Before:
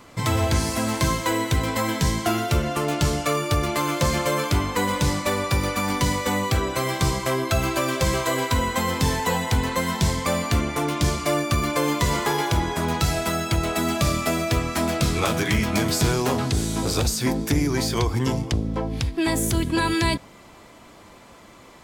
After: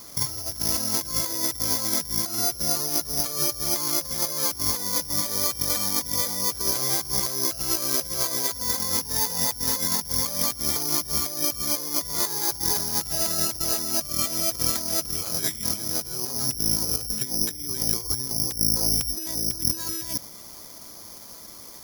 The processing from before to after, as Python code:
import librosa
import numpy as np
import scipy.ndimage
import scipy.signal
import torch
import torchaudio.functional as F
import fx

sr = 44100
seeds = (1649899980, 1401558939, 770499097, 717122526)

y = fx.high_shelf(x, sr, hz=3400.0, db=-7.0)
y = fx.over_compress(y, sr, threshold_db=-27.0, ratio=-0.5)
y = (np.kron(scipy.signal.resample_poly(y, 1, 8), np.eye(8)[0]) * 8)[:len(y)]
y = F.gain(torch.from_numpy(y), -7.5).numpy()